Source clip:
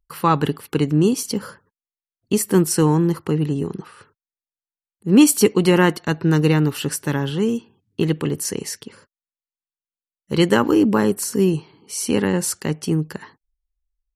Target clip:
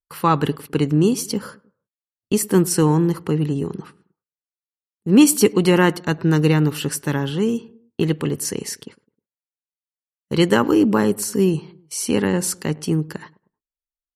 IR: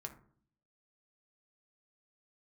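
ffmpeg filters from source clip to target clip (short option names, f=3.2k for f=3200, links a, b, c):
-filter_complex "[0:a]agate=range=-24dB:threshold=-38dB:ratio=16:detection=peak,asplit=2[a][b];[b]adelay=104,lowpass=f=950:p=1,volume=-21dB,asplit=2[c][d];[d]adelay=104,lowpass=f=950:p=1,volume=0.48,asplit=2[e][f];[f]adelay=104,lowpass=f=950:p=1,volume=0.48[g];[c][e][g]amix=inputs=3:normalize=0[h];[a][h]amix=inputs=2:normalize=0"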